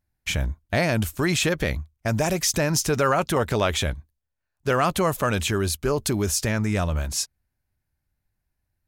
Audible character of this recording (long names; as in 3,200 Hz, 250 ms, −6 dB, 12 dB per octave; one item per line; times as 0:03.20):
background noise floor −81 dBFS
spectral slope −4.0 dB per octave